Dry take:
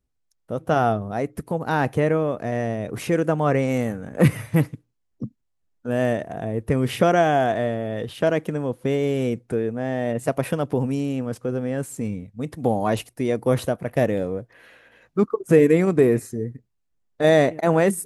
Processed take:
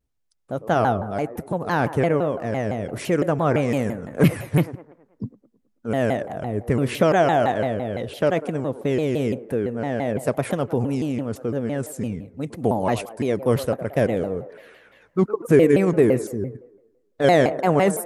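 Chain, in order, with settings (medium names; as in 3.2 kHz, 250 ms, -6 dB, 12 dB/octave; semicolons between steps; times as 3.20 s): feedback echo behind a band-pass 108 ms, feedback 50%, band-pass 680 Hz, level -12 dB; vibrato with a chosen wave saw down 5.9 Hz, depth 250 cents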